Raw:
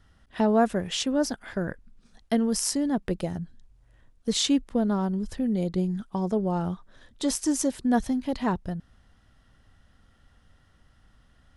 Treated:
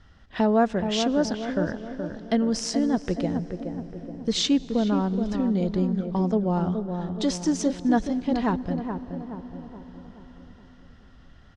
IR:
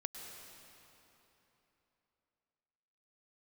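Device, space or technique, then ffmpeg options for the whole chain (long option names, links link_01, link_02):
ducked reverb: -filter_complex "[0:a]asplit=3[link_01][link_02][link_03];[1:a]atrim=start_sample=2205[link_04];[link_02][link_04]afir=irnorm=-1:irlink=0[link_05];[link_03]apad=whole_len=509855[link_06];[link_05][link_06]sidechaincompress=threshold=-34dB:ratio=10:attack=8.2:release=1340,volume=2dB[link_07];[link_01][link_07]amix=inputs=2:normalize=0,lowpass=frequency=6300:width=0.5412,lowpass=frequency=6300:width=1.3066,asplit=2[link_08][link_09];[link_09]adelay=424,lowpass=frequency=1100:poles=1,volume=-6dB,asplit=2[link_10][link_11];[link_11]adelay=424,lowpass=frequency=1100:poles=1,volume=0.53,asplit=2[link_12][link_13];[link_13]adelay=424,lowpass=frequency=1100:poles=1,volume=0.53,asplit=2[link_14][link_15];[link_15]adelay=424,lowpass=frequency=1100:poles=1,volume=0.53,asplit=2[link_16][link_17];[link_17]adelay=424,lowpass=frequency=1100:poles=1,volume=0.53,asplit=2[link_18][link_19];[link_19]adelay=424,lowpass=frequency=1100:poles=1,volume=0.53,asplit=2[link_20][link_21];[link_21]adelay=424,lowpass=frequency=1100:poles=1,volume=0.53[link_22];[link_08][link_10][link_12][link_14][link_16][link_18][link_20][link_22]amix=inputs=8:normalize=0"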